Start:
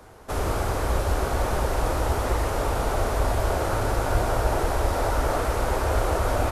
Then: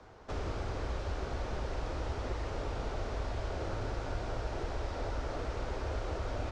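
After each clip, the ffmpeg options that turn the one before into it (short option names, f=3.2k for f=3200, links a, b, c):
-filter_complex "[0:a]lowpass=f=5.9k:w=0.5412,lowpass=f=5.9k:w=1.3066,acrossover=split=560|1700|3700[a][b][c][d];[a]acompressor=threshold=-27dB:ratio=4[e];[b]acompressor=threshold=-42dB:ratio=4[f];[c]acompressor=threshold=-45dB:ratio=4[g];[d]acompressor=threshold=-51dB:ratio=4[h];[e][f][g][h]amix=inputs=4:normalize=0,volume=-6.5dB"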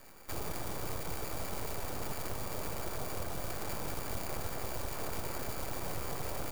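-filter_complex "[0:a]acrossover=split=1400[a][b];[b]acrusher=samples=19:mix=1:aa=0.000001[c];[a][c]amix=inputs=2:normalize=0,crystalizer=i=7.5:c=0,aeval=exprs='abs(val(0))':c=same,volume=-1dB"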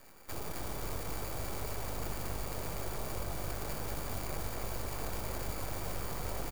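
-filter_complex "[0:a]asplit=7[a][b][c][d][e][f][g];[b]adelay=273,afreqshift=-50,volume=-5.5dB[h];[c]adelay=546,afreqshift=-100,volume=-11.5dB[i];[d]adelay=819,afreqshift=-150,volume=-17.5dB[j];[e]adelay=1092,afreqshift=-200,volume=-23.6dB[k];[f]adelay=1365,afreqshift=-250,volume=-29.6dB[l];[g]adelay=1638,afreqshift=-300,volume=-35.6dB[m];[a][h][i][j][k][l][m]amix=inputs=7:normalize=0,volume=-2dB"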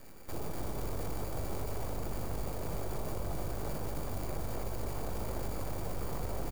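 -filter_complex "[0:a]asplit=2[a][b];[b]adynamicsmooth=sensitivity=4.5:basefreq=590,volume=2.5dB[c];[a][c]amix=inputs=2:normalize=0,alimiter=level_in=3dB:limit=-24dB:level=0:latency=1:release=35,volume=-3dB,volume=1dB"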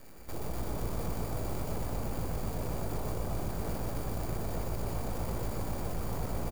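-filter_complex "[0:a]asplit=8[a][b][c][d][e][f][g][h];[b]adelay=123,afreqshift=58,volume=-6dB[i];[c]adelay=246,afreqshift=116,volume=-10.9dB[j];[d]adelay=369,afreqshift=174,volume=-15.8dB[k];[e]adelay=492,afreqshift=232,volume=-20.6dB[l];[f]adelay=615,afreqshift=290,volume=-25.5dB[m];[g]adelay=738,afreqshift=348,volume=-30.4dB[n];[h]adelay=861,afreqshift=406,volume=-35.3dB[o];[a][i][j][k][l][m][n][o]amix=inputs=8:normalize=0"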